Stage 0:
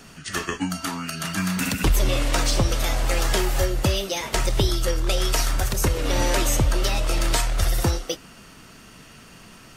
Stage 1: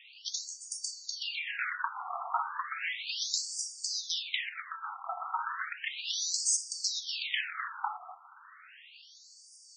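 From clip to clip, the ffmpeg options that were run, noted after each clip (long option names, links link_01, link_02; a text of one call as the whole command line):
ffmpeg -i in.wav -af "afftfilt=real='re*between(b*sr/1024,950*pow(6600/950,0.5+0.5*sin(2*PI*0.34*pts/sr))/1.41,950*pow(6600/950,0.5+0.5*sin(2*PI*0.34*pts/sr))*1.41)':imag='im*between(b*sr/1024,950*pow(6600/950,0.5+0.5*sin(2*PI*0.34*pts/sr))/1.41,950*pow(6600/950,0.5+0.5*sin(2*PI*0.34*pts/sr))*1.41)':win_size=1024:overlap=0.75" out.wav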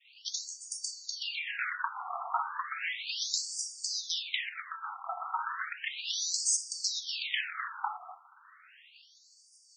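ffmpeg -i in.wav -af "agate=range=-33dB:threshold=-50dB:ratio=3:detection=peak" out.wav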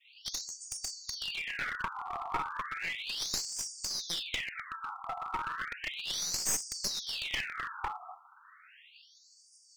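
ffmpeg -i in.wav -af "aeval=exprs='clip(val(0),-1,0.02)':channel_layout=same" out.wav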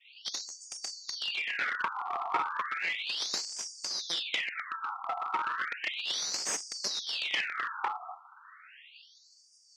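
ffmpeg -i in.wav -af "highpass=320,lowpass=5200,volume=4dB" out.wav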